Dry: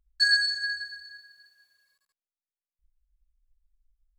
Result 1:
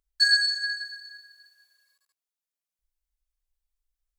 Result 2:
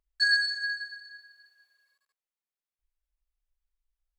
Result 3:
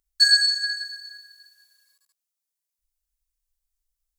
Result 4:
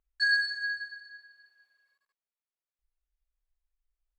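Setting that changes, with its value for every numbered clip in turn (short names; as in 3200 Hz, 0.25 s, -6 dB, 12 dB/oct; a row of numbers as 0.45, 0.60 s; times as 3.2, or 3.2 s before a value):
tone controls, treble: +4, -6, +12, -15 dB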